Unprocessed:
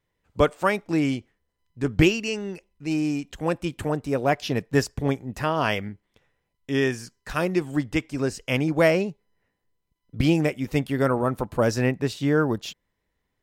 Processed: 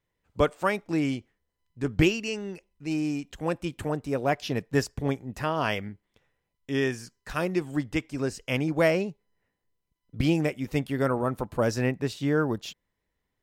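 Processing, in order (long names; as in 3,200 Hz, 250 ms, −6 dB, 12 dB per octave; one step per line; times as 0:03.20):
level −3.5 dB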